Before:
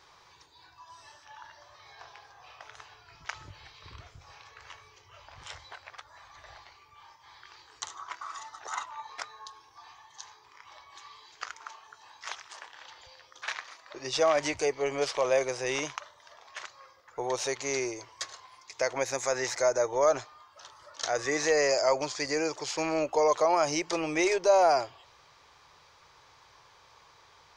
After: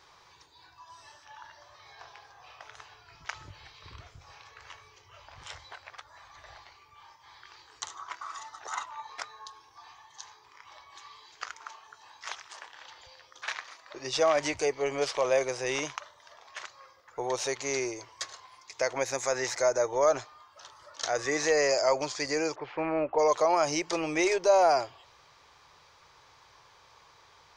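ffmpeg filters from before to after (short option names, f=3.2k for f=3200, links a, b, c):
-filter_complex "[0:a]asplit=3[a][b][c];[a]afade=t=out:st=22.54:d=0.02[d];[b]lowpass=f=2.3k:w=0.5412,lowpass=f=2.3k:w=1.3066,afade=t=in:st=22.54:d=0.02,afade=t=out:st=23.18:d=0.02[e];[c]afade=t=in:st=23.18:d=0.02[f];[d][e][f]amix=inputs=3:normalize=0"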